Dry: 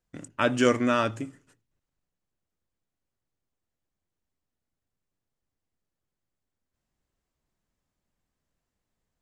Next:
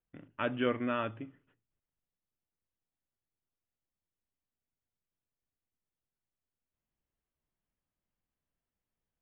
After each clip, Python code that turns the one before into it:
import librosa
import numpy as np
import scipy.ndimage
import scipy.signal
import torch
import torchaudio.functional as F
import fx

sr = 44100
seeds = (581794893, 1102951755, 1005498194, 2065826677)

y = scipy.signal.sosfilt(scipy.signal.butter(16, 3400.0, 'lowpass', fs=sr, output='sos'), x)
y = y * 10.0 ** (-9.0 / 20.0)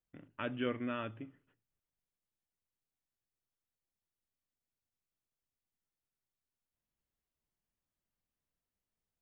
y = fx.dynamic_eq(x, sr, hz=860.0, q=0.71, threshold_db=-43.0, ratio=4.0, max_db=-5)
y = y * 10.0 ** (-3.0 / 20.0)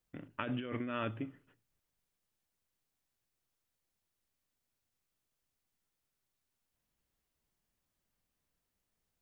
y = fx.over_compress(x, sr, threshold_db=-41.0, ratio=-1.0)
y = y * 10.0 ** (3.5 / 20.0)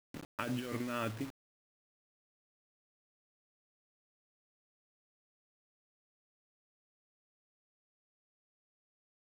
y = fx.quant_dither(x, sr, seeds[0], bits=8, dither='none')